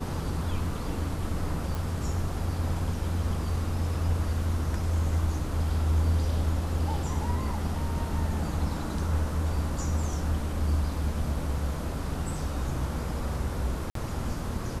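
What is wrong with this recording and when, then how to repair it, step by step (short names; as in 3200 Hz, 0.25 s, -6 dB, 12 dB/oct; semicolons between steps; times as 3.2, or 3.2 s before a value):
1.75 pop
13.9–13.95 gap 53 ms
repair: de-click; interpolate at 13.9, 53 ms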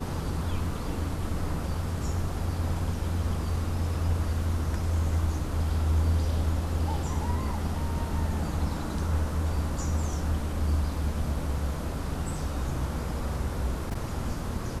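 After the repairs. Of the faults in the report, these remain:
none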